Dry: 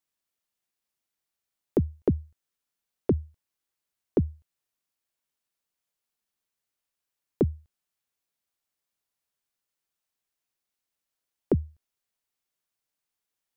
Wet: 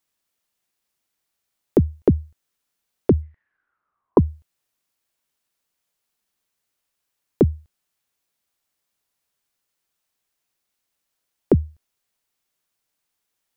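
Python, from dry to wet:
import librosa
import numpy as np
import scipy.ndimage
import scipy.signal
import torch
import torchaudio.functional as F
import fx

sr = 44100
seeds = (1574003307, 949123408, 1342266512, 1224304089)

y = fx.lowpass_res(x, sr, hz=fx.line((3.21, 2100.0), (4.2, 990.0)), q=12.0, at=(3.21, 4.2), fade=0.02)
y = y * 10.0 ** (7.5 / 20.0)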